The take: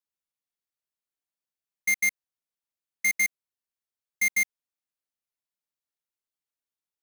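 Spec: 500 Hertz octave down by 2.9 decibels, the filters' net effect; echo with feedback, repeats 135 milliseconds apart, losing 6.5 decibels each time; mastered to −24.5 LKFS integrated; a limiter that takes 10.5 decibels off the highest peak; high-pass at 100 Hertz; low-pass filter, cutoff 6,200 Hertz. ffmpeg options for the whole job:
ffmpeg -i in.wav -af "highpass=100,lowpass=6200,equalizer=frequency=500:width_type=o:gain=-4,alimiter=level_in=6dB:limit=-24dB:level=0:latency=1,volume=-6dB,aecho=1:1:135|270|405|540|675|810:0.473|0.222|0.105|0.0491|0.0231|0.0109,volume=12dB" out.wav

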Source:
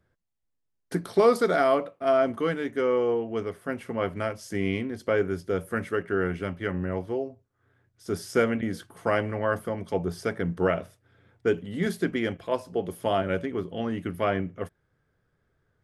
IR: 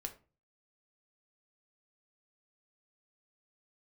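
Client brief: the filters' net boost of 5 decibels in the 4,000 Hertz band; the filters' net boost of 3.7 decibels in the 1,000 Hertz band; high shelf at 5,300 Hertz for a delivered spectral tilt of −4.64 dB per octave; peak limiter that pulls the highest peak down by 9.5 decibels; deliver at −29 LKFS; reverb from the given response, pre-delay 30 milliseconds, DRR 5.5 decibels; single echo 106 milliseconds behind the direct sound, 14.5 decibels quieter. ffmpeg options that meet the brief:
-filter_complex "[0:a]equalizer=frequency=1000:width_type=o:gain=5,equalizer=frequency=4000:width_type=o:gain=5.5,highshelf=frequency=5300:gain=3,alimiter=limit=-16.5dB:level=0:latency=1,aecho=1:1:106:0.188,asplit=2[link_01][link_02];[1:a]atrim=start_sample=2205,adelay=30[link_03];[link_02][link_03]afir=irnorm=-1:irlink=0,volume=-3dB[link_04];[link_01][link_04]amix=inputs=2:normalize=0,volume=-1dB"

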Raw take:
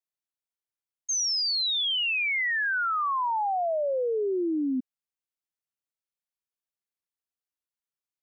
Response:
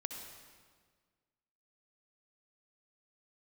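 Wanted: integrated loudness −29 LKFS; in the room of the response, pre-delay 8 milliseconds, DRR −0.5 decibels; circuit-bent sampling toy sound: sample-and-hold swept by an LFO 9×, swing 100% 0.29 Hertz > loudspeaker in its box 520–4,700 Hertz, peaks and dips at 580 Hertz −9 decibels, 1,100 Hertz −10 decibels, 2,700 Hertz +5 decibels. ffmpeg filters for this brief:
-filter_complex "[0:a]asplit=2[link_01][link_02];[1:a]atrim=start_sample=2205,adelay=8[link_03];[link_02][link_03]afir=irnorm=-1:irlink=0,volume=1.5dB[link_04];[link_01][link_04]amix=inputs=2:normalize=0,acrusher=samples=9:mix=1:aa=0.000001:lfo=1:lforange=9:lforate=0.29,highpass=520,equalizer=frequency=580:width_type=q:width=4:gain=-9,equalizer=frequency=1100:width_type=q:width=4:gain=-10,equalizer=frequency=2700:width_type=q:width=4:gain=5,lowpass=frequency=4700:width=0.5412,lowpass=frequency=4700:width=1.3066,volume=-4.5dB"

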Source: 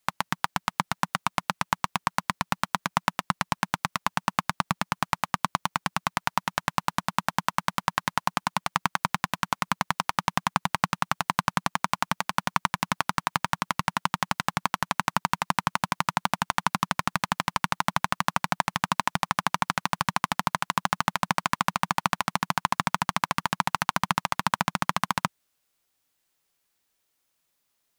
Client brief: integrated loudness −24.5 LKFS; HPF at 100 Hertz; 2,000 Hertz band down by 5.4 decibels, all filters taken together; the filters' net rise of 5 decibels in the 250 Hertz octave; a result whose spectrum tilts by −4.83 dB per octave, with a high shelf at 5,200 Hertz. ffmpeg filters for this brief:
ffmpeg -i in.wav -af "highpass=100,equalizer=frequency=250:width_type=o:gain=7.5,equalizer=frequency=2000:width_type=o:gain=-6.5,highshelf=frequency=5200:gain=-7,volume=5dB" out.wav

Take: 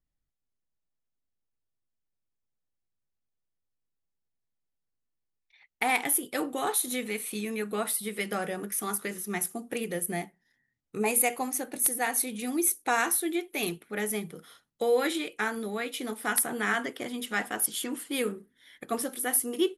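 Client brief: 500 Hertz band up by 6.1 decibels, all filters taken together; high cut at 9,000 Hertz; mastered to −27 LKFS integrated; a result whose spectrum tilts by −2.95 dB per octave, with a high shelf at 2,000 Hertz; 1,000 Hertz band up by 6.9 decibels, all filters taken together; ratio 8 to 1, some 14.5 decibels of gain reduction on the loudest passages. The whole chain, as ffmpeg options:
ffmpeg -i in.wav -af "lowpass=9000,equalizer=frequency=500:width_type=o:gain=5.5,equalizer=frequency=1000:width_type=o:gain=6,highshelf=frequency=2000:gain=6,acompressor=threshold=-29dB:ratio=8,volume=6dB" out.wav

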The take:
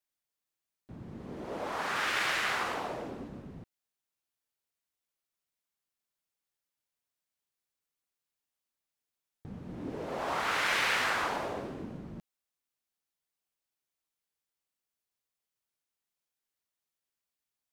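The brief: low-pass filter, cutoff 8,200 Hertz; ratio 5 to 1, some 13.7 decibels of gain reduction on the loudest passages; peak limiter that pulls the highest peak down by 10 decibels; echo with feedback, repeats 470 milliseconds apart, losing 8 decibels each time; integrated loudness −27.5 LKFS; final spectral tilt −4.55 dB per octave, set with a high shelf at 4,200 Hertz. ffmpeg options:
ffmpeg -i in.wav -af "lowpass=8200,highshelf=frequency=4200:gain=7.5,acompressor=threshold=-40dB:ratio=5,alimiter=level_in=13.5dB:limit=-24dB:level=0:latency=1,volume=-13.5dB,aecho=1:1:470|940|1410|1880|2350:0.398|0.159|0.0637|0.0255|0.0102,volume=19dB" out.wav

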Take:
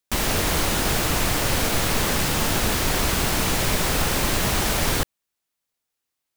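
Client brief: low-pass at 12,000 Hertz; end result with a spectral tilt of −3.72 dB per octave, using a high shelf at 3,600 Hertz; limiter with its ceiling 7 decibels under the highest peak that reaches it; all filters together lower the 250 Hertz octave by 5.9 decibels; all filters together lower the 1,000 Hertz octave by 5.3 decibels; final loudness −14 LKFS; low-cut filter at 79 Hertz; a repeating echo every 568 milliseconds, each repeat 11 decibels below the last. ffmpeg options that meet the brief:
ffmpeg -i in.wav -af "highpass=79,lowpass=12000,equalizer=frequency=250:width_type=o:gain=-8,equalizer=frequency=1000:width_type=o:gain=-6,highshelf=frequency=3600:gain=-6,alimiter=limit=-21dB:level=0:latency=1,aecho=1:1:568|1136|1704:0.282|0.0789|0.0221,volume=15dB" out.wav

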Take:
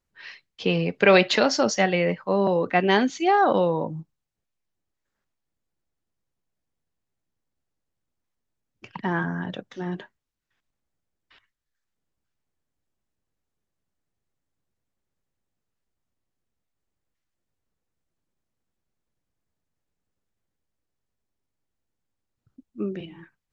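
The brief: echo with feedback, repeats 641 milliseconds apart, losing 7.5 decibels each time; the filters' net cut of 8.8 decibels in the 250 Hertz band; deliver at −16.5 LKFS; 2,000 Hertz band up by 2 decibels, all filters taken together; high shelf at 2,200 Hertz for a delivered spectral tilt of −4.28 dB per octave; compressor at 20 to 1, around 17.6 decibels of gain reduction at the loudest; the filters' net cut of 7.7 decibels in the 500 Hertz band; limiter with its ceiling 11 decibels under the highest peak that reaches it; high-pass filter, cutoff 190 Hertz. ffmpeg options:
ffmpeg -i in.wav -af "highpass=190,equalizer=frequency=250:width_type=o:gain=-8,equalizer=frequency=500:width_type=o:gain=-7,equalizer=frequency=2000:width_type=o:gain=7,highshelf=frequency=2200:gain=-7.5,acompressor=threshold=-31dB:ratio=20,alimiter=level_in=3dB:limit=-24dB:level=0:latency=1,volume=-3dB,aecho=1:1:641|1282|1923|2564|3205:0.422|0.177|0.0744|0.0312|0.0131,volume=23dB" out.wav

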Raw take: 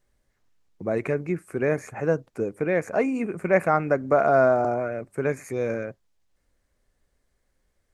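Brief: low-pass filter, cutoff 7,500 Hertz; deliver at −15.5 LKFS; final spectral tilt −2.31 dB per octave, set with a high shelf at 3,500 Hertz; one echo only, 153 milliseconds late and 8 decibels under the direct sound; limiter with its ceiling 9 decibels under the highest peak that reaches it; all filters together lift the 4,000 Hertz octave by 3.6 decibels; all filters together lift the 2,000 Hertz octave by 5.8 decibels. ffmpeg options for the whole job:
ffmpeg -i in.wav -af "lowpass=7500,equalizer=frequency=2000:width_type=o:gain=8.5,highshelf=frequency=3500:gain=-8.5,equalizer=frequency=4000:width_type=o:gain=8,alimiter=limit=-13.5dB:level=0:latency=1,aecho=1:1:153:0.398,volume=10.5dB" out.wav

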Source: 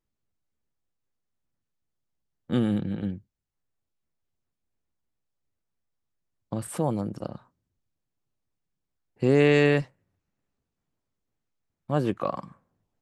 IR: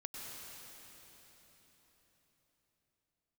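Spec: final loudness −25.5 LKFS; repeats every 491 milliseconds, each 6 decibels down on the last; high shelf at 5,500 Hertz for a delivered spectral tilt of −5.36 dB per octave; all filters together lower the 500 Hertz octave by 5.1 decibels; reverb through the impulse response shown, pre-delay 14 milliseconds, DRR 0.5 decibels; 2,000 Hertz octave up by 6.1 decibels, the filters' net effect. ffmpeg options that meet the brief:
-filter_complex "[0:a]equalizer=frequency=500:width_type=o:gain=-6.5,equalizer=frequency=2000:width_type=o:gain=7,highshelf=frequency=5500:gain=3.5,aecho=1:1:491|982|1473|1964|2455|2946:0.501|0.251|0.125|0.0626|0.0313|0.0157,asplit=2[link_01][link_02];[1:a]atrim=start_sample=2205,adelay=14[link_03];[link_02][link_03]afir=irnorm=-1:irlink=0,volume=0.5dB[link_04];[link_01][link_04]amix=inputs=2:normalize=0,volume=0.5dB"

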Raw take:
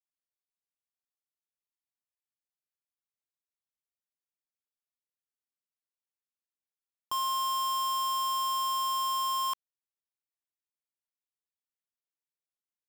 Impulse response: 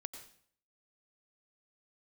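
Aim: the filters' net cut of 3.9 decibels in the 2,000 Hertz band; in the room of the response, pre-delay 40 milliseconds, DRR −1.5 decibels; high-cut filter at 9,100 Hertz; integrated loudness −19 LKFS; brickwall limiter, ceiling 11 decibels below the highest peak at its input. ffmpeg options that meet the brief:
-filter_complex "[0:a]lowpass=9100,equalizer=frequency=2000:width_type=o:gain=-6,alimiter=level_in=16dB:limit=-24dB:level=0:latency=1,volume=-16dB,asplit=2[link_01][link_02];[1:a]atrim=start_sample=2205,adelay=40[link_03];[link_02][link_03]afir=irnorm=-1:irlink=0,volume=4.5dB[link_04];[link_01][link_04]amix=inputs=2:normalize=0,volume=21dB"

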